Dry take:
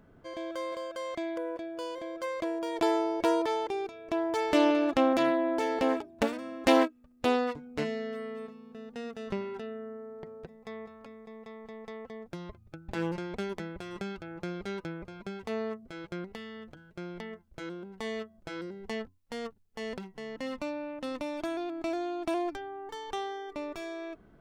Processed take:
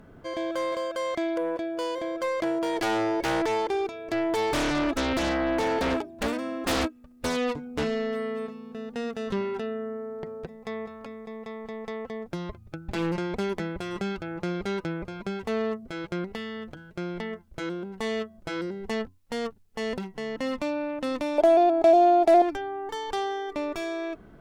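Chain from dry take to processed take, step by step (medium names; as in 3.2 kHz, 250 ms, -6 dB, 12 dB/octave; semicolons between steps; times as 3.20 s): in parallel at -9 dB: sine folder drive 19 dB, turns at -8 dBFS; 21.38–22.42 s: on the sum: high-order bell 590 Hz +14.5 dB 1.3 oct; trim -7.5 dB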